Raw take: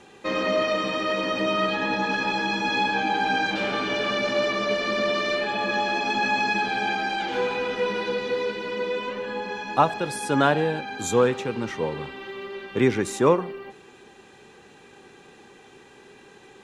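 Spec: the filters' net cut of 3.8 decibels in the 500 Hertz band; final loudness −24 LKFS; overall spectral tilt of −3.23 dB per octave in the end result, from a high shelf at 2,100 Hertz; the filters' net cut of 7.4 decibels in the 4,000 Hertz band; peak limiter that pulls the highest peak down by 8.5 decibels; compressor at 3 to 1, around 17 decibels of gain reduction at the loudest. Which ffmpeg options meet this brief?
ffmpeg -i in.wav -af "equalizer=frequency=500:width_type=o:gain=-4,highshelf=frequency=2100:gain=-6.5,equalizer=frequency=4000:width_type=o:gain=-3.5,acompressor=threshold=-40dB:ratio=3,volume=16.5dB,alimiter=limit=-15dB:level=0:latency=1" out.wav

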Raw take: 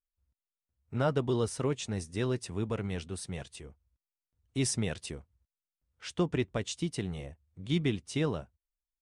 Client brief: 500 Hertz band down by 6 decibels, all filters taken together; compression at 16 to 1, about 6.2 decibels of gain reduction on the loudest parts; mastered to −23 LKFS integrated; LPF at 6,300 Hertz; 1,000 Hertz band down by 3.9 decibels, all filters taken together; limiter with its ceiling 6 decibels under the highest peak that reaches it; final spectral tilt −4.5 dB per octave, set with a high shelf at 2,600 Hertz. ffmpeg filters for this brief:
ffmpeg -i in.wav -af "lowpass=6300,equalizer=frequency=500:width_type=o:gain=-7.5,equalizer=frequency=1000:width_type=o:gain=-4,highshelf=frequency=2600:gain=5.5,acompressor=threshold=-32dB:ratio=16,volume=17.5dB,alimiter=limit=-11.5dB:level=0:latency=1" out.wav

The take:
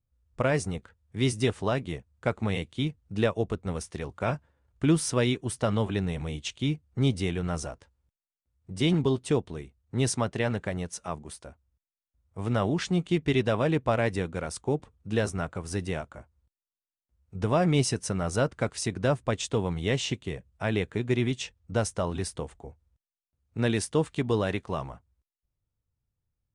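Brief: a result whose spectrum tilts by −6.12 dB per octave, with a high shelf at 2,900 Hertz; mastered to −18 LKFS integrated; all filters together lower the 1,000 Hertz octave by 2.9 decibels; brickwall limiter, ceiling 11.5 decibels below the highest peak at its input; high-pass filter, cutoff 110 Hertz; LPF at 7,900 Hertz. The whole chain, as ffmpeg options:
ffmpeg -i in.wav -af "highpass=110,lowpass=7900,equalizer=frequency=1000:width_type=o:gain=-3,highshelf=frequency=2900:gain=-7.5,volume=18.5dB,alimiter=limit=-5.5dB:level=0:latency=1" out.wav

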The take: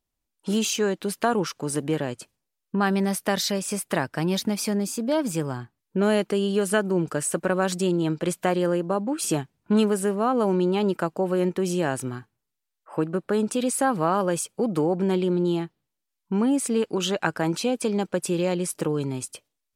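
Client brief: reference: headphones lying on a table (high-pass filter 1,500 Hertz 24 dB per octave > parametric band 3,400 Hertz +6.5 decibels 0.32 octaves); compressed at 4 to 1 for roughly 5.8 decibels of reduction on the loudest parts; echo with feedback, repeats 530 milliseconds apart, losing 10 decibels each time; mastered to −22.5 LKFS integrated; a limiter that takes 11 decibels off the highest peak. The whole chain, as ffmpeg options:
ffmpeg -i in.wav -af "acompressor=threshold=-24dB:ratio=4,alimiter=limit=-21dB:level=0:latency=1,highpass=frequency=1500:width=0.5412,highpass=frequency=1500:width=1.3066,equalizer=frequency=3400:width_type=o:width=0.32:gain=6.5,aecho=1:1:530|1060|1590|2120:0.316|0.101|0.0324|0.0104,volume=13.5dB" out.wav

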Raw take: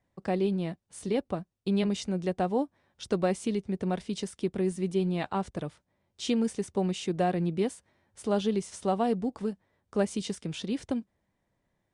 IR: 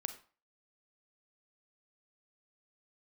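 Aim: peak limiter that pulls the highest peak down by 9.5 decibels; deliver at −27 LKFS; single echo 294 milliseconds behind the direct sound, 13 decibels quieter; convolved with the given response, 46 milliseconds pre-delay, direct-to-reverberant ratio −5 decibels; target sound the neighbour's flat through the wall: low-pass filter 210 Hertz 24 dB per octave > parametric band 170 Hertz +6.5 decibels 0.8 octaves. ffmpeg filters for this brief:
-filter_complex "[0:a]alimiter=level_in=1dB:limit=-24dB:level=0:latency=1,volume=-1dB,aecho=1:1:294:0.224,asplit=2[link_01][link_02];[1:a]atrim=start_sample=2205,adelay=46[link_03];[link_02][link_03]afir=irnorm=-1:irlink=0,volume=6dB[link_04];[link_01][link_04]amix=inputs=2:normalize=0,lowpass=frequency=210:width=0.5412,lowpass=frequency=210:width=1.3066,equalizer=frequency=170:width_type=o:width=0.8:gain=6.5,volume=1.5dB"

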